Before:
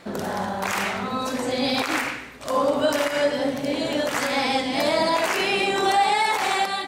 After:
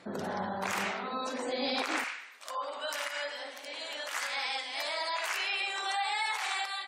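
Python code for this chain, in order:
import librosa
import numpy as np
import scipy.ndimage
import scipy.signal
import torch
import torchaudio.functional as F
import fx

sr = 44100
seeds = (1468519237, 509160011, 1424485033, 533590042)

y = fx.highpass(x, sr, hz=fx.steps((0.0, 93.0), (0.92, 290.0), (2.04, 1100.0)), slope=12)
y = fx.spec_gate(y, sr, threshold_db=-30, keep='strong')
y = y * librosa.db_to_amplitude(-7.5)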